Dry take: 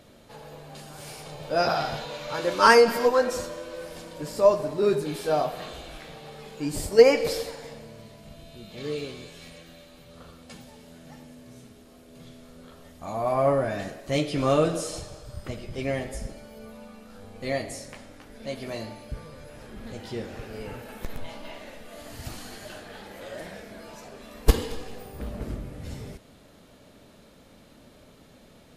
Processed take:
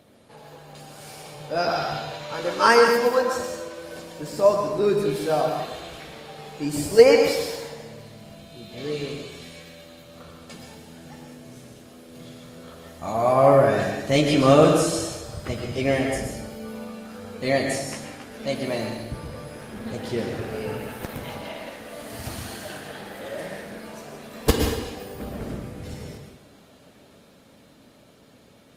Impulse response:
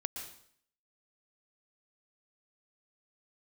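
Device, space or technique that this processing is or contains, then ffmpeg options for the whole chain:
far-field microphone of a smart speaker: -filter_complex "[1:a]atrim=start_sample=2205[a];[0:a][a]afir=irnorm=-1:irlink=0,highpass=90,dynaudnorm=f=680:g=13:m=10dB" -ar 48000 -c:a libopus -b:a 32k

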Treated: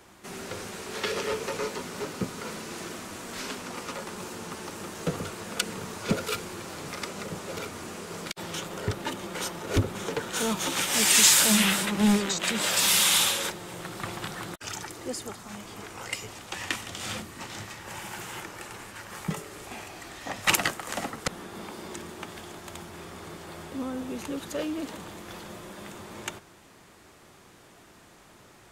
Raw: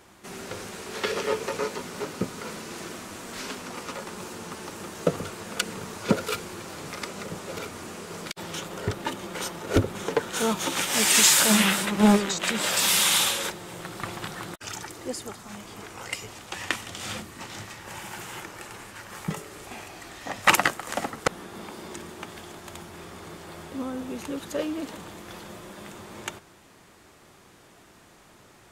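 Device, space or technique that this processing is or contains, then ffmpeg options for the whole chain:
one-band saturation: -filter_complex "[0:a]acrossover=split=200|2200[a][b][c];[b]asoftclip=type=tanh:threshold=-25.5dB[d];[a][d][c]amix=inputs=3:normalize=0"

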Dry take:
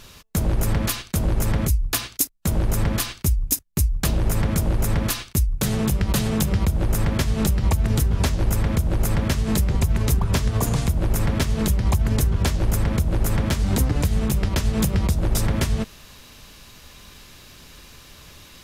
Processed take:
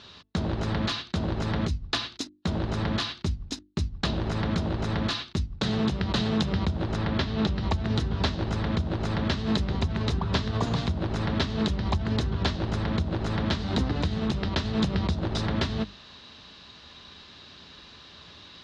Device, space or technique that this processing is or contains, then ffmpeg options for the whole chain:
guitar cabinet: -filter_complex "[0:a]asettb=1/sr,asplit=3[a][b][c];[a]atrim=end=6.964[d];[b]atrim=start=6.96:end=7.56,asetpts=PTS-STARTPTS,afade=t=in:d=0.004:c=qsin,afade=t=out:st=0.596:d=0.004:c=qsin,lowpass=5.4k[e];[c]atrim=start=7.556[f];[d][e]acrossfade=d=0.004:c1=hsin:c2=qsin[g];[g][f]acrossfade=d=0.004:c1=qsin:c2=hsin,highpass=92,equalizer=f=130:t=q:w=4:g=-6,equalizer=f=510:t=q:w=4:g=-4,equalizer=f=2.3k:t=q:w=4:g=-5,equalizer=f=3.9k:t=q:w=4:g=6,lowpass=f=4.6k:w=0.5412,lowpass=f=4.6k:w=1.3066,bandreject=f=50:t=h:w=6,bandreject=f=100:t=h:w=6,bandreject=f=150:t=h:w=6,bandreject=f=200:t=h:w=6,bandreject=f=250:t=h:w=6,bandreject=f=300:t=h:w=6,bandreject=f=350:t=h:w=6,volume=-1dB"

